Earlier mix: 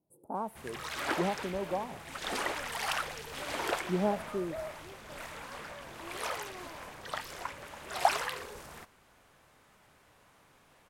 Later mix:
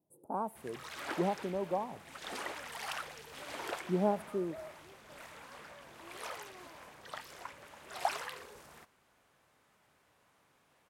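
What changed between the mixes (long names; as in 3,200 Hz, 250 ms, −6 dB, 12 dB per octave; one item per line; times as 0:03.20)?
background −7.0 dB
master: add high-pass filter 95 Hz 6 dB per octave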